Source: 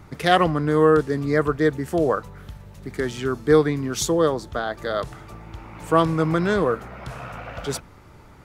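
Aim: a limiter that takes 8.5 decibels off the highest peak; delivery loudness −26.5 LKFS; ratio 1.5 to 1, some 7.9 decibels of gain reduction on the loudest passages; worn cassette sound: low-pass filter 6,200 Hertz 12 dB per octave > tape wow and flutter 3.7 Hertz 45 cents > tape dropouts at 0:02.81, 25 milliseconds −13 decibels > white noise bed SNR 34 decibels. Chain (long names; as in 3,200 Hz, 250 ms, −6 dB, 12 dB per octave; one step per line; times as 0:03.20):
downward compressor 1.5 to 1, threshold −33 dBFS
brickwall limiter −18.5 dBFS
low-pass filter 6,200 Hz 12 dB per octave
tape wow and flutter 3.7 Hz 45 cents
tape dropouts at 0:02.81, 25 ms −13 dB
white noise bed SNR 34 dB
level +4.5 dB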